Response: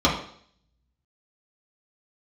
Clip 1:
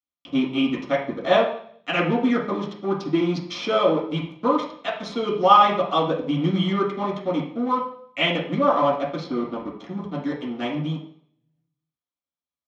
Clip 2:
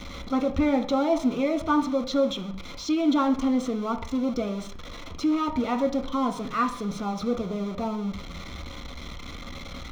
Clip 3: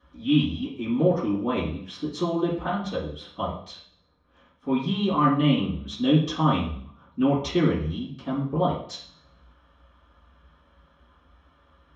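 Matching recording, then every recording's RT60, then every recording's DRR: 1; 0.60, 0.60, 0.60 s; -5.5, 4.5, -13.5 dB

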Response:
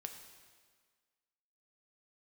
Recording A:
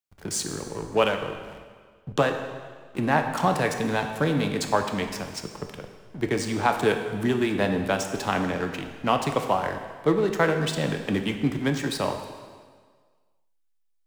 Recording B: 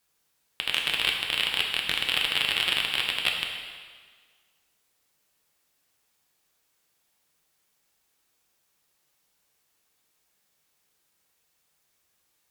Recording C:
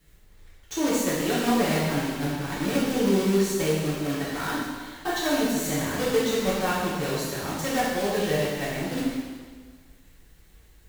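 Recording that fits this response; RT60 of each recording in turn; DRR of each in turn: A; 1.6, 1.6, 1.6 s; 4.5, 0.0, -8.5 dB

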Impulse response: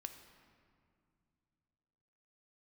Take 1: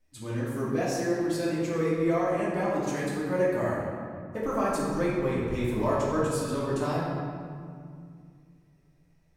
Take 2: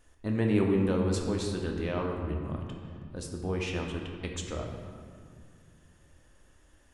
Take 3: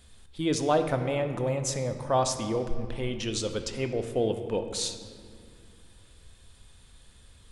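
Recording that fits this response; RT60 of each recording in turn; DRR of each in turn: 3; 2.2, 2.2, 2.4 s; -8.0, 0.5, 6.5 dB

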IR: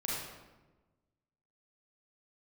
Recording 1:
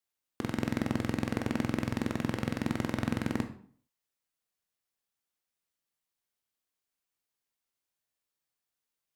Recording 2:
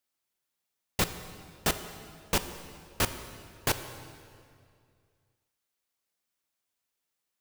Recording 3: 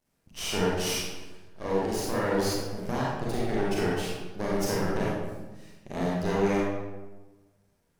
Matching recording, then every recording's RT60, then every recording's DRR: 3; 0.50, 2.3, 1.2 s; 6.5, 9.0, -6.0 dB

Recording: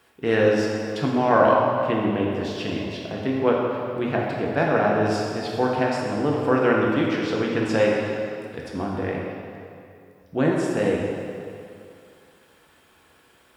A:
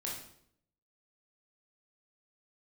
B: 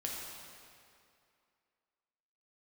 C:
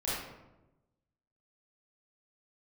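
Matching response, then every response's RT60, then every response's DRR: B; 0.70, 2.5, 1.0 s; -4.0, -3.0, -10.0 dB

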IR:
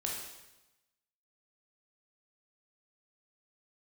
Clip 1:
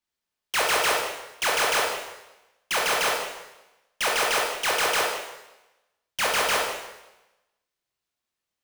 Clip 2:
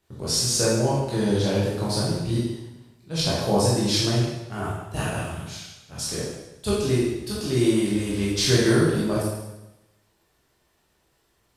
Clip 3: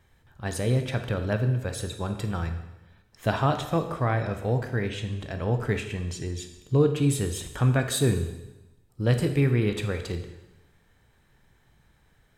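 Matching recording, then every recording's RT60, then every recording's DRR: 1; 1.0, 1.0, 1.0 s; -2.5, -7.5, 6.5 dB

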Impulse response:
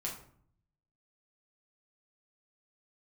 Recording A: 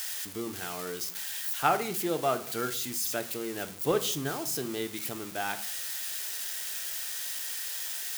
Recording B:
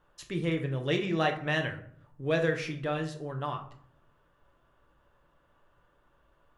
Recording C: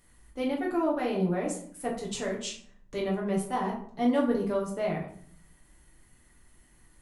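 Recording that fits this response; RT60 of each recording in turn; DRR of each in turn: C; 0.60, 0.60, 0.55 s; 8.5, 4.0, -4.0 dB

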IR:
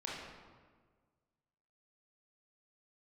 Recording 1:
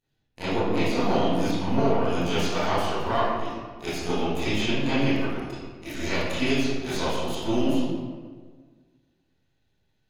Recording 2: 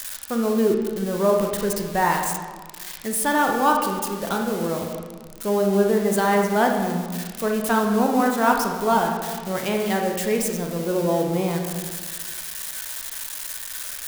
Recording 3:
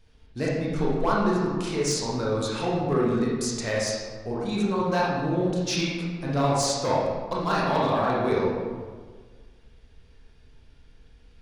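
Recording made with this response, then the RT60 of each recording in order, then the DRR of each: 3; 1.6, 1.6, 1.6 s; -15.0, 1.5, -5.5 dB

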